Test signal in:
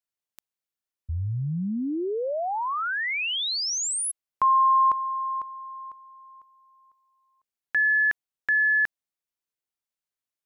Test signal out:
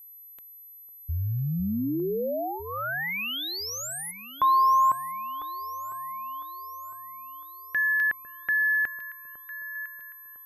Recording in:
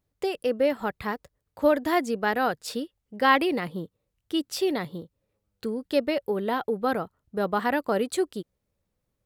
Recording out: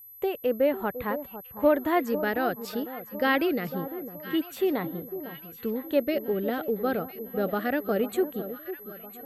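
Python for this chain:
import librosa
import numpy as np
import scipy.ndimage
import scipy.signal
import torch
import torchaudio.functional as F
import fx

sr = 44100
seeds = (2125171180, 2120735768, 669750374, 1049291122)

y = x + 10.0 ** (-37.0 / 20.0) * np.sin(2.0 * np.pi * 12000.0 * np.arange(len(x)) / sr)
y = fx.filter_lfo_notch(y, sr, shape='square', hz=0.25, low_hz=970.0, high_hz=5100.0, q=1.8)
y = fx.high_shelf(y, sr, hz=3200.0, db=-8.5)
y = fx.echo_alternate(y, sr, ms=502, hz=1100.0, feedback_pct=68, wet_db=-11)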